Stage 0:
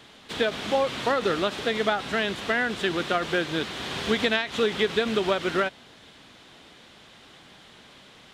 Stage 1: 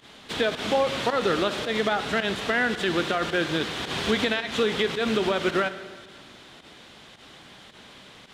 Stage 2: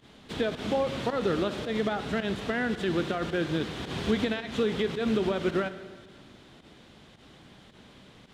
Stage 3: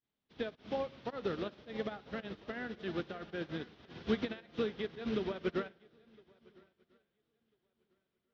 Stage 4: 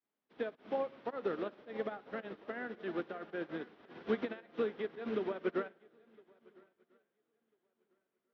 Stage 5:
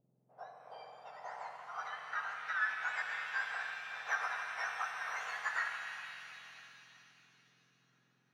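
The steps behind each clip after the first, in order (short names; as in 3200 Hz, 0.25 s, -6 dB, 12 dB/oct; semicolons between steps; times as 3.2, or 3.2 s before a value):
limiter -15.5 dBFS, peak gain reduction 7 dB; pump 109 bpm, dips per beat 1, -17 dB, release 71 ms; reverb RT60 1.7 s, pre-delay 27 ms, DRR 11.5 dB; gain +2.5 dB
low shelf 450 Hz +11.5 dB; gain -9 dB
elliptic low-pass 5600 Hz, stop band 60 dB; on a send: swung echo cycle 1.345 s, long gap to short 3:1, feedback 44%, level -12 dB; on the sum: upward expander 2.5:1, over -45 dBFS; gain -3.5 dB
three-band isolator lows -20 dB, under 220 Hz, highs -14 dB, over 2300 Hz; gain +1.5 dB
spectrum mirrored in octaves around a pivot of 1600 Hz; low-pass sweep 610 Hz -> 1600 Hz, 0.71–2.39; shimmer reverb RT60 3 s, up +7 st, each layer -8 dB, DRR 2.5 dB; gain +7 dB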